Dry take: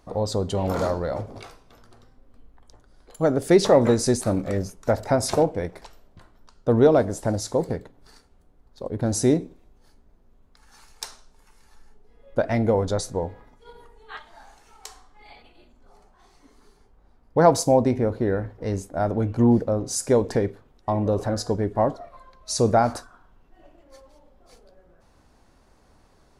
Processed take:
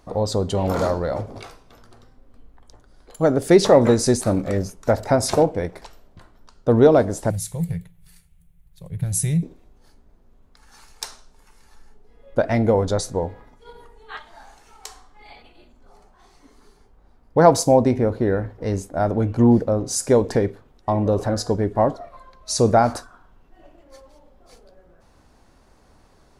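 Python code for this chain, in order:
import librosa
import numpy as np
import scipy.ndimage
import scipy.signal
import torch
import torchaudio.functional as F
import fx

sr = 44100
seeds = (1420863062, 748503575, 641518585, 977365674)

y = fx.curve_eq(x, sr, hz=(120.0, 170.0, 240.0, 420.0, 730.0, 1400.0, 2300.0, 3400.0, 4900.0, 11000.0), db=(0, 8, -26, -19, -18, -14, 0, -3, -11, 9), at=(7.3, 9.43))
y = y * librosa.db_to_amplitude(3.0)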